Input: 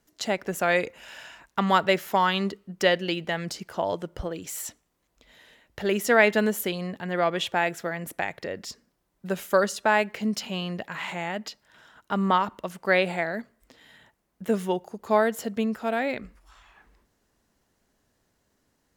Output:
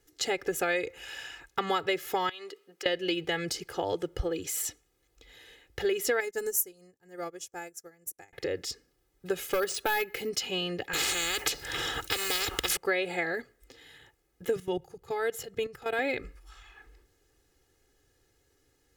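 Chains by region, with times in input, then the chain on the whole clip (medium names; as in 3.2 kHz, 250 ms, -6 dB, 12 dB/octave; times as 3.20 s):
2.29–2.86 s: high-pass 510 Hz + compression 4:1, threshold -42 dBFS
6.20–8.33 s: FFT filter 130 Hz 0 dB, 1.4 kHz -4 dB, 3.6 kHz -13 dB, 5.8 kHz +13 dB, 16 kHz +11 dB + upward expansion 2.5:1, over -41 dBFS
9.49–10.29 s: careless resampling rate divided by 3×, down none, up hold + hard clipper -15.5 dBFS
10.93–12.77 s: companded quantiser 8-bit + spectrum-flattening compressor 10:1
14.56–15.99 s: resonant low shelf 190 Hz +8 dB, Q 3 + level held to a coarse grid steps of 14 dB
whole clip: peaking EQ 950 Hz -8.5 dB 0.61 oct; comb 2.4 ms, depth 91%; compression 6:1, threshold -25 dBFS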